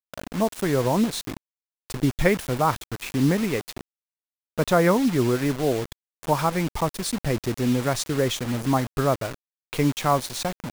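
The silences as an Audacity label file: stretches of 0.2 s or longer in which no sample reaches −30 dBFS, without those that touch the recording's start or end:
1.370000	1.900000	silence
3.810000	4.580000	silence
5.930000	6.230000	silence
9.340000	9.730000	silence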